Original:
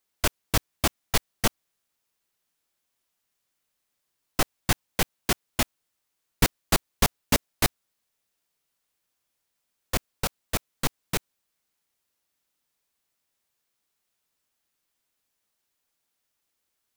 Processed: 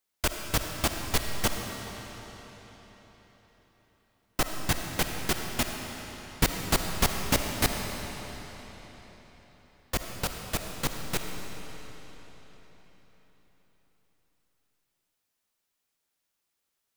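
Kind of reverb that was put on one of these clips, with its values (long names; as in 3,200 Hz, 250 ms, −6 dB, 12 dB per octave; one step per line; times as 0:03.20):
comb and all-pass reverb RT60 4.5 s, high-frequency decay 0.9×, pre-delay 20 ms, DRR 3.5 dB
level −3 dB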